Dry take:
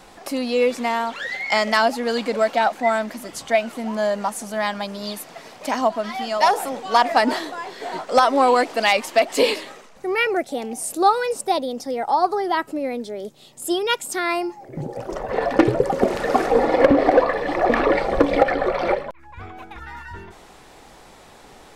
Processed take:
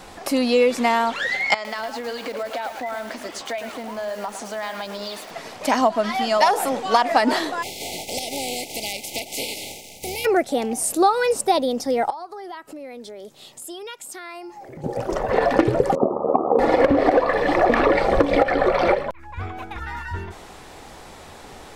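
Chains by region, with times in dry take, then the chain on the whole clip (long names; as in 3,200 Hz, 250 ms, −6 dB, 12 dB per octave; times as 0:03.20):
0:01.54–0:05.31: downward compressor 16 to 1, threshold −28 dBFS + band-pass filter 330–5,900 Hz + feedback echo at a low word length 109 ms, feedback 35%, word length 7 bits, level −7 dB
0:07.62–0:10.24: compressing power law on the bin magnitudes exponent 0.41 + linear-phase brick-wall band-stop 900–2,000 Hz + downward compressor 4 to 1, threshold −32 dBFS
0:12.10–0:14.84: low-shelf EQ 350 Hz −8 dB + downward compressor 4 to 1, threshold −40 dBFS
0:15.95–0:16.59: linear-phase brick-wall band-pass 160–1,300 Hz + amplitude modulation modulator 74 Hz, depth 55%
whole clip: parametric band 84 Hz +7.5 dB 0.38 octaves; downward compressor 10 to 1, threshold −17 dBFS; level +4.5 dB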